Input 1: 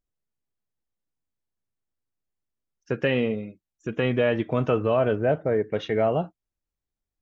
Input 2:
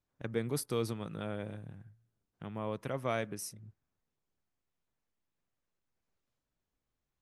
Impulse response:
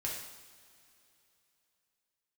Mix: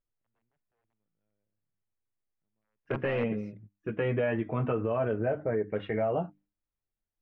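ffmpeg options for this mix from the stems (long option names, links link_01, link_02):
-filter_complex "[0:a]bandreject=frequency=50:width_type=h:width=6,bandreject=frequency=100:width_type=h:width=6,bandreject=frequency=150:width_type=h:width=6,bandreject=frequency=200:width_type=h:width=6,bandreject=frequency=250:width_type=h:width=6,bandreject=frequency=300:width_type=h:width=6,flanger=delay=8.8:depth=1.6:regen=-25:speed=0.41:shape=sinusoidal,volume=0.5dB,asplit=2[link_01][link_02];[1:a]equalizer=frequency=1200:width_type=o:width=0.97:gain=-7,aeval=exprs='(mod(25.1*val(0)+1,2)-1)/25.1':channel_layout=same,volume=1.5dB[link_03];[link_02]apad=whole_len=318236[link_04];[link_03][link_04]sidechaingate=range=-47dB:threshold=-56dB:ratio=16:detection=peak[link_05];[link_01][link_05]amix=inputs=2:normalize=0,lowpass=frequency=2500:width=0.5412,lowpass=frequency=2500:width=1.3066,alimiter=limit=-20dB:level=0:latency=1:release=75"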